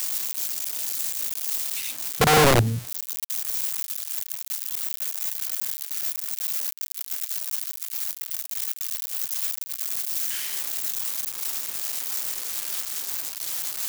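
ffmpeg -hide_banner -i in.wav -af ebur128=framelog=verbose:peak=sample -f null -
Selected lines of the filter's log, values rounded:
Integrated loudness:
  I:         -25.2 LUFS
  Threshold: -35.2 LUFS
Loudness range:
  LRA:         4.4 LU
  Threshold: -45.3 LUFS
  LRA low:   -27.0 LUFS
  LRA high:  -22.6 LUFS
Sample peak:
  Peak:       -8.4 dBFS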